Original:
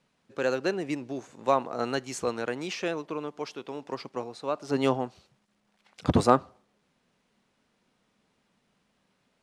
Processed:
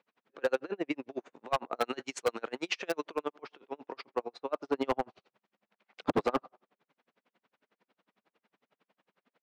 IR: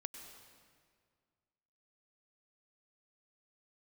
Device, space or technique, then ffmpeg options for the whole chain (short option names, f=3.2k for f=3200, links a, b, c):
helicopter radio: -filter_complex "[0:a]highpass=320,lowpass=2.8k,aeval=exprs='val(0)*pow(10,-39*(0.5-0.5*cos(2*PI*11*n/s))/20)':c=same,asoftclip=type=hard:threshold=-27dB,asettb=1/sr,asplit=3[a][b][c];[a]atrim=end=1.764[d];[b]atrim=start=1.76:end=3.34,asetpts=PTS-STARTPTS,afade=t=in:d=0.004:c=qsin,afade=t=out:st=1.576:d=0.004:c=qsin,aemphasis=mode=production:type=75kf[e];[c]atrim=start=3.336[f];[d][e]acrossfade=d=0.004:c1=hsin:c2=qsin[g];[g][f]acrossfade=d=0.004:c1=qsin:c2=hsin,volume=6dB"